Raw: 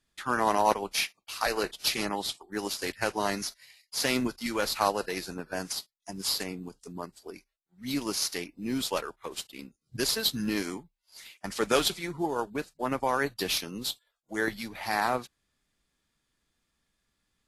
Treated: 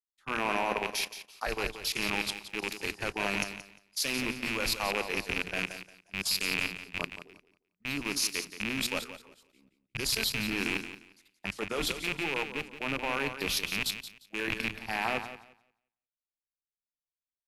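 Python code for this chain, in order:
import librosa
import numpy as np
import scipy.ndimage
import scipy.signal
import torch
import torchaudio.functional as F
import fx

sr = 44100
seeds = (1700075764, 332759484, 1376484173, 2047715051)

y = fx.rattle_buzz(x, sr, strikes_db=-40.0, level_db=-14.0)
y = fx.low_shelf(y, sr, hz=170.0, db=7.0)
y = fx.hum_notches(y, sr, base_hz=60, count=5)
y = fx.level_steps(y, sr, step_db=16)
y = fx.echo_feedback(y, sr, ms=176, feedback_pct=42, wet_db=-7.5)
y = fx.band_widen(y, sr, depth_pct=100)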